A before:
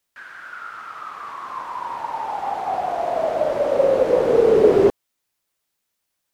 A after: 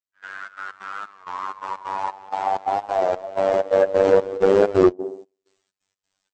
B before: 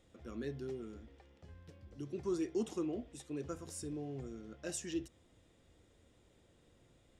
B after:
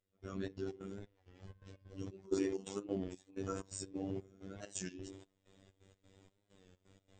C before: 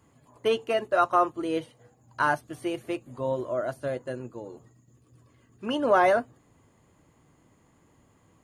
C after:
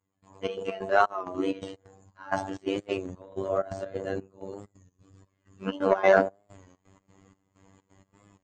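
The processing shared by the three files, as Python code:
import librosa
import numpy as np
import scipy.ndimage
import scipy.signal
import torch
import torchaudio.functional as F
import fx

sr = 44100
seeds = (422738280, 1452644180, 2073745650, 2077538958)

y = fx.phase_scramble(x, sr, seeds[0], window_ms=50)
y = fx.echo_wet_bandpass(y, sr, ms=67, feedback_pct=50, hz=410.0, wet_db=-16.5)
y = fx.step_gate(y, sr, bpm=129, pattern='..xx.x.xx', floor_db=-24.0, edge_ms=4.5)
y = fx.fold_sine(y, sr, drive_db=5, ceiling_db=-2.5)
y = fx.robotise(y, sr, hz=96.3)
y = fx.transient(y, sr, attack_db=0, sustain_db=8)
y = fx.brickwall_lowpass(y, sr, high_hz=8400.0)
y = fx.record_warp(y, sr, rpm=33.33, depth_cents=100.0)
y = y * 10.0 ** (-4.0 / 20.0)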